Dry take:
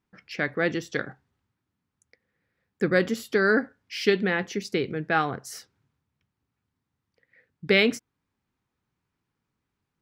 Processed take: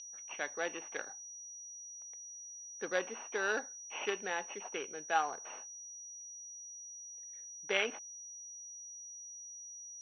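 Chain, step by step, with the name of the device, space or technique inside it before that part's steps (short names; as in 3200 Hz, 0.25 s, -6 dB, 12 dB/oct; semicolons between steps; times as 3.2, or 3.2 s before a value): toy sound module (decimation joined by straight lines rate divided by 8×; pulse-width modulation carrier 5800 Hz; speaker cabinet 720–4200 Hz, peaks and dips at 850 Hz +5 dB, 1300 Hz -4 dB, 1900 Hz -5 dB, 2800 Hz +10 dB, 4100 Hz +4 dB); gain -5 dB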